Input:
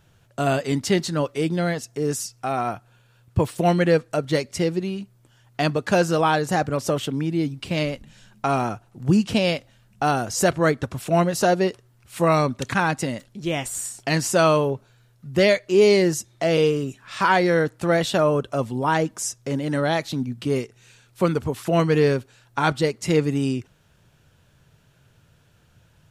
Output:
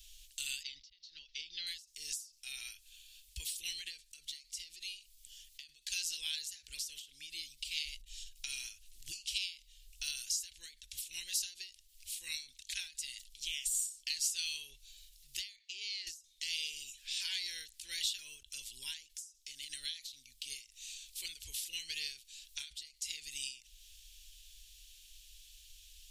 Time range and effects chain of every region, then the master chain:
0.63–1.67 s: steep low-pass 5.7 kHz 48 dB/octave + slow attack 672 ms
15.56–16.07 s: high-pass 200 Hz + compression 4:1, threshold -23 dBFS + three-band isolator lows -22 dB, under 300 Hz, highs -22 dB, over 5.7 kHz
whole clip: inverse Chebyshev band-stop 100–1300 Hz, stop band 50 dB; compression 2:1, threshold -57 dBFS; endings held to a fixed fall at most 150 dB/s; trim +11.5 dB

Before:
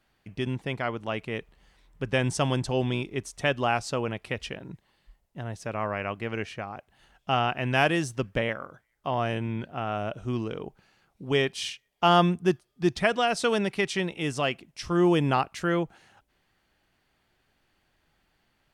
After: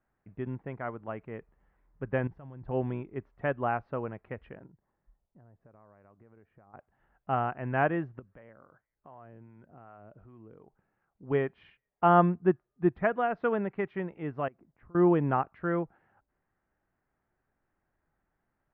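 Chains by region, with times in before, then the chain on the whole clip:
2.27–2.68 s: level held to a coarse grid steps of 21 dB + bass shelf 150 Hz +11.5 dB
4.66–6.74 s: compression 5:1, threshold -47 dBFS + peaking EQ 2.9 kHz -8.5 dB 2 oct
8.19–11.23 s: compression 3:1, threshold -41 dBFS + harmonic tremolo 2.6 Hz, depth 50%, crossover 600 Hz
14.48–14.95 s: low-pass 1.4 kHz + compression, threshold -45 dBFS
whole clip: inverse Chebyshev low-pass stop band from 8.9 kHz, stop band 80 dB; de-esser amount 85%; upward expansion 1.5:1, over -33 dBFS

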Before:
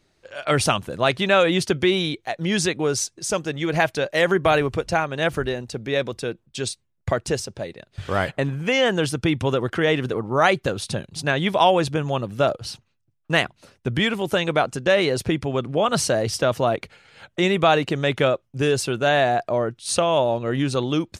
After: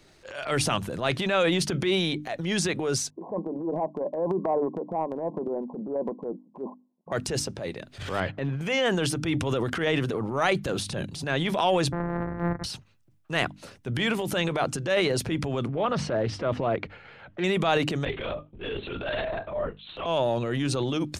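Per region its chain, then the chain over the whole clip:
3.10–7.12 s: sorted samples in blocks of 8 samples + brick-wall FIR band-pass 170–1100 Hz + distance through air 140 m
8.20–8.61 s: distance through air 210 m + upward expansion, over -35 dBFS
11.92–12.64 s: sorted samples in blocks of 256 samples + de-esser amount 55% + elliptic low-pass 1.9 kHz
15.68–17.44 s: low-pass 2 kHz + loudspeaker Doppler distortion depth 0.18 ms
18.05–20.06 s: feedback comb 200 Hz, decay 0.16 s, mix 90% + LPC vocoder at 8 kHz whisper
whole clip: hum notches 50/100/150/200/250/300 Hz; transient shaper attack -9 dB, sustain +7 dB; three bands compressed up and down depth 40%; trim -4 dB

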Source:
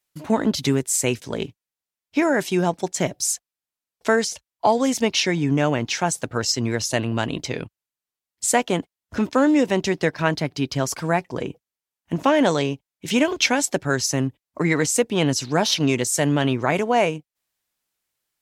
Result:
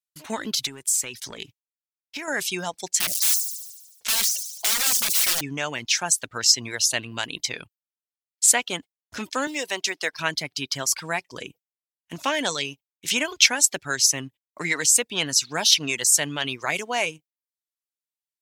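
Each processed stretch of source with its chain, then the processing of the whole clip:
0.53–2.28 s: compression 5:1, threshold -28 dBFS + waveshaping leveller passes 1
2.97–5.41 s: integer overflow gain 20 dB + feedback echo behind a high-pass 73 ms, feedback 61%, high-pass 5.6 kHz, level -4 dB + decay stretcher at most 50 dB/s
9.47–10.13 s: high-pass 340 Hz + peaking EQ 670 Hz +3.5 dB 0.2 oct + short-mantissa float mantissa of 6-bit
whole clip: tilt shelf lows -10 dB, about 1.3 kHz; reverb removal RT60 0.55 s; gate with hold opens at -46 dBFS; trim -3 dB

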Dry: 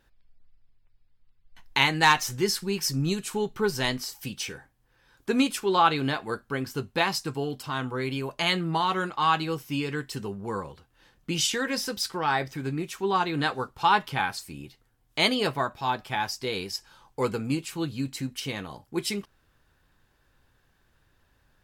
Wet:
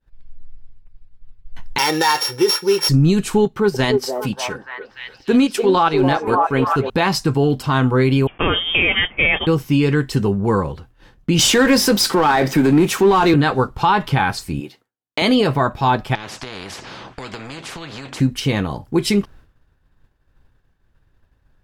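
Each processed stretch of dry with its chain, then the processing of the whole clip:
1.78–2.89 s: sorted samples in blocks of 8 samples + high-pass 370 Hz + comb 2.2 ms, depth 73%
3.45–6.90 s: high-pass 140 Hz 6 dB/octave + transient shaper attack -5 dB, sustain -9 dB + repeats whose band climbs or falls 292 ms, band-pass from 530 Hz, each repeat 0.7 oct, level -2 dB
8.27–9.47 s: zero-crossing glitches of -21 dBFS + gate -29 dBFS, range -16 dB + frequency inversion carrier 3.4 kHz
11.39–13.34 s: high-pass 180 Hz 24 dB/octave + treble shelf 9.5 kHz +7.5 dB + power-law waveshaper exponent 0.7
14.60–15.22 s: block-companded coder 7-bit + high-pass 300 Hz
16.15–18.20 s: band-pass 240–3100 Hz + compression 3:1, threshold -41 dBFS + spectrum-flattening compressor 4:1
whole clip: expander -55 dBFS; tilt EQ -2 dB/octave; loudness maximiser +18 dB; trim -5.5 dB

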